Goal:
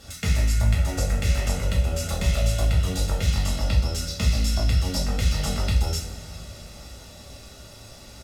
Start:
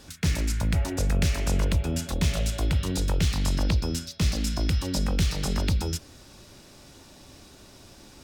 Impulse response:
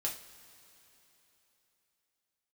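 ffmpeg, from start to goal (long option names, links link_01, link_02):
-filter_complex "[0:a]acompressor=threshold=-27dB:ratio=2.5,aecho=1:1:1.5:0.53[link_01];[1:a]atrim=start_sample=2205,asetrate=32193,aresample=44100[link_02];[link_01][link_02]afir=irnorm=-1:irlink=0"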